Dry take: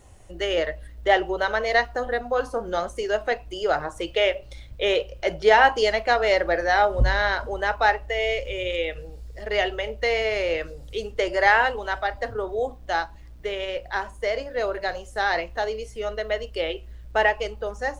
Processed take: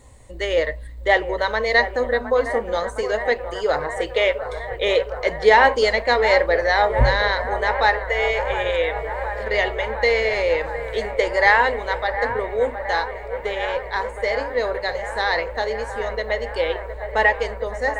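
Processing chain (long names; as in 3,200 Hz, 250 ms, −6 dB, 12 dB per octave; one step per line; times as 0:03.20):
EQ curve with evenly spaced ripples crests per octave 1, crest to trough 8 dB
on a send: delay with a band-pass on its return 713 ms, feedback 80%, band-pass 910 Hz, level −10 dB
on the sum: level +2 dB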